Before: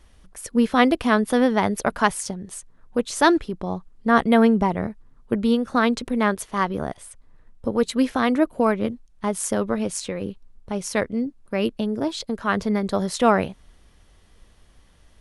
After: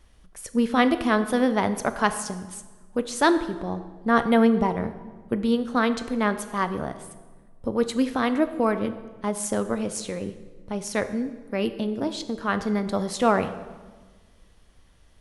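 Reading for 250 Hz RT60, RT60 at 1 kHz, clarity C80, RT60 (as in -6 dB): 1.6 s, 1.3 s, 14.0 dB, 1.4 s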